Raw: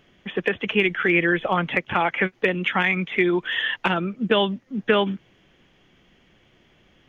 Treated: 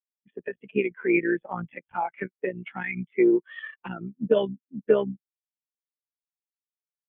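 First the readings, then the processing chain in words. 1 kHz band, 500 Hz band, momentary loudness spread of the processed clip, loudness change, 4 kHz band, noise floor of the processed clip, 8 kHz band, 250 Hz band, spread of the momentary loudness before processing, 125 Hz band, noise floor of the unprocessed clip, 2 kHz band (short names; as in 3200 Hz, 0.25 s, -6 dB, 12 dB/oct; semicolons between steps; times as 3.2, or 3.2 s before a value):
-9.0 dB, -1.5 dB, 16 LU, -4.5 dB, -19.5 dB, under -85 dBFS, n/a, -2.5 dB, 6 LU, -8.5 dB, -60 dBFS, -11.5 dB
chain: cycle switcher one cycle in 3, muted; spectral expander 2.5:1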